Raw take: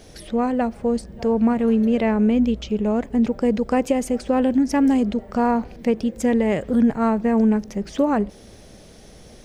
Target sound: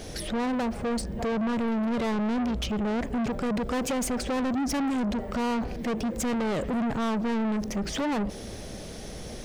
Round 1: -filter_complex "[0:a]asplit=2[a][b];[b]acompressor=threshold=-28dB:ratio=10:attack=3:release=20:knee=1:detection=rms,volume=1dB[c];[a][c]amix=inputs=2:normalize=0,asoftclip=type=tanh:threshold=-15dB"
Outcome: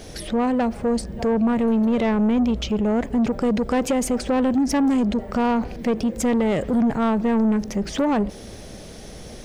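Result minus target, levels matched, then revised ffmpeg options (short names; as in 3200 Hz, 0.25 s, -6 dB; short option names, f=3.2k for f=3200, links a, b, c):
soft clip: distortion -8 dB
-filter_complex "[0:a]asplit=2[a][b];[b]acompressor=threshold=-28dB:ratio=10:attack=3:release=20:knee=1:detection=rms,volume=1dB[c];[a][c]amix=inputs=2:normalize=0,asoftclip=type=tanh:threshold=-25.5dB"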